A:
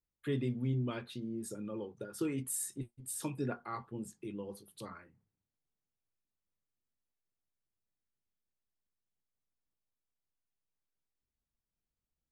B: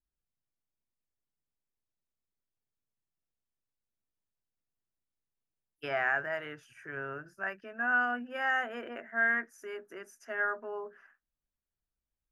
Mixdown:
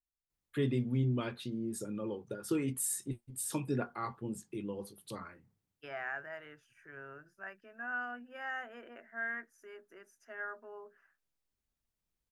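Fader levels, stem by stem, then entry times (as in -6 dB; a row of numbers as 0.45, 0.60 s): +2.5, -10.0 dB; 0.30, 0.00 s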